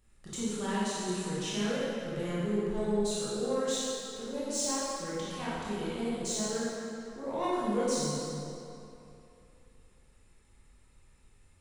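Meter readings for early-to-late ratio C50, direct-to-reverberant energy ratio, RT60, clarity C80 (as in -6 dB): -4.5 dB, -9.5 dB, 2.9 s, -2.5 dB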